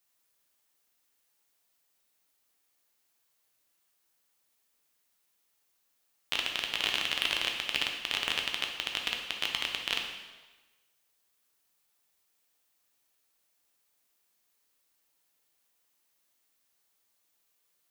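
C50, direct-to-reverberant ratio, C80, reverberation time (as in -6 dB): 4.5 dB, 1.5 dB, 7.0 dB, 1.2 s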